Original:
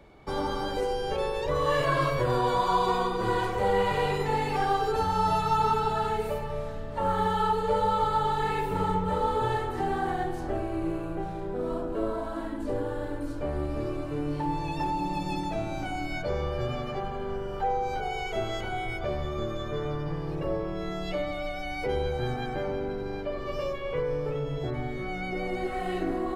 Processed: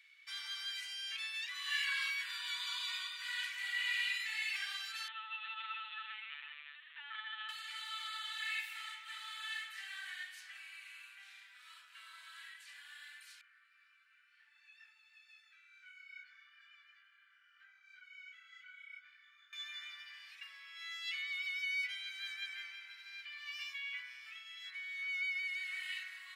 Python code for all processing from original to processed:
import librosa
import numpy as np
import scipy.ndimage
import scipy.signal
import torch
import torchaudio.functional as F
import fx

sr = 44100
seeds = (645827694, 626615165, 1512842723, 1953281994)

y = fx.chain(x, sr, fx.hum_notches(base_hz=60, count=5),
    fx.echo_feedback(ms=332, feedback_pct=30, wet_db=-14.5),
    fx.lpc_vocoder(seeds[0], excitation='pitch_kept', order=16), at=(5.08, 7.49))
y = fx.chain(y, sr, fx.ladder_highpass(hz=1300.0, resonance_pct=70),
    fx.high_shelf(hz=2300.0, db=-11.5),
    fx.detune_double(cents=24), at=(13.41, 19.53))
y = scipy.signal.sosfilt(scipy.signal.butter(6, 2000.0, 'highpass', fs=sr, output='sos'), y)
y = fx.high_shelf(y, sr, hz=3100.0, db=-11.5)
y = F.gain(torch.from_numpy(y), 7.5).numpy()